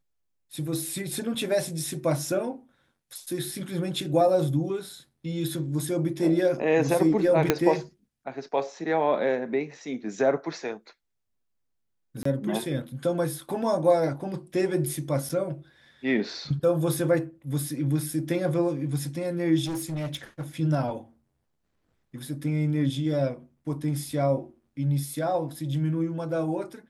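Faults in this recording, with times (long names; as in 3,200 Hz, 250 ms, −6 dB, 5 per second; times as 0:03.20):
0:07.50: click −5 dBFS
0:12.23–0:12.25: drop-out 24 ms
0:15.29–0:15.30: drop-out 5.9 ms
0:19.65–0:20.43: clipping −27.5 dBFS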